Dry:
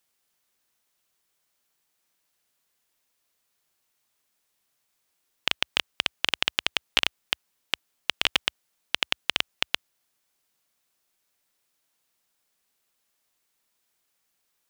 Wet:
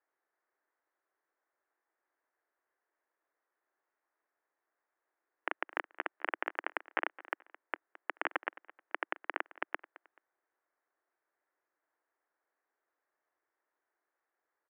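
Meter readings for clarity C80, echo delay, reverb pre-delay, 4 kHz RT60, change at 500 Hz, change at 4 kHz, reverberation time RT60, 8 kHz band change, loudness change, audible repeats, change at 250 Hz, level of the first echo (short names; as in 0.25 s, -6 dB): none, 0.216 s, none, none, -1.5 dB, -28.5 dB, none, under -35 dB, -12.0 dB, 2, -6.0 dB, -19.0 dB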